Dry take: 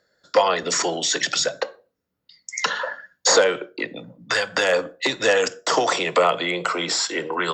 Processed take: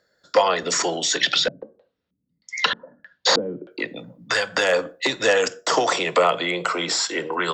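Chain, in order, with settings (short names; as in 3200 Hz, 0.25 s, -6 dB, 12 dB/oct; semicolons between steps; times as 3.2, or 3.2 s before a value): 1.17–3.71 LFO low-pass square 1.6 Hz 240–3600 Hz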